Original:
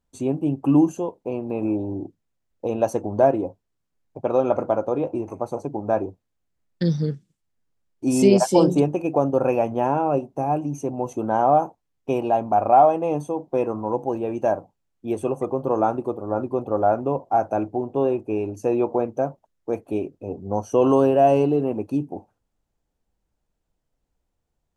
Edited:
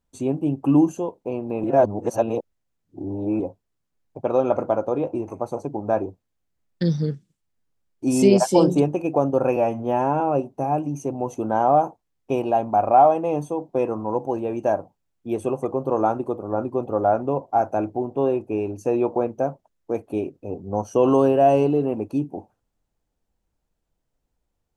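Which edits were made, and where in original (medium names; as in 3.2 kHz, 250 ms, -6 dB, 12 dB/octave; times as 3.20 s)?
1.64–3.40 s: reverse
9.56–9.99 s: stretch 1.5×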